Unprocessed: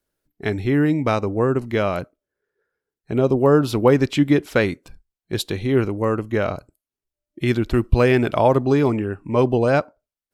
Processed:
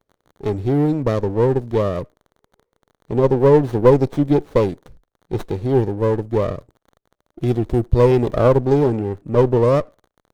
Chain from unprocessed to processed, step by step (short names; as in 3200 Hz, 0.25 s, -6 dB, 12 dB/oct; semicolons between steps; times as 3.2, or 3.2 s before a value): crackle 53/s -43 dBFS; ten-band EQ 125 Hz +4 dB, 250 Hz -3 dB, 500 Hz +9 dB, 1000 Hz -8 dB, 2000 Hz -10 dB; running maximum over 17 samples; gain -1 dB